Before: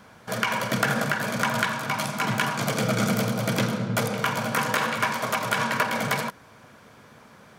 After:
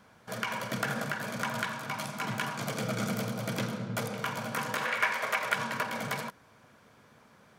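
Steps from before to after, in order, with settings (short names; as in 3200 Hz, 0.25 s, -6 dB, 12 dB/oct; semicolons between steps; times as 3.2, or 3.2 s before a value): 4.85–5.54 graphic EQ 125/250/500/2000 Hz -10/-6/+4/+10 dB; gain -8.5 dB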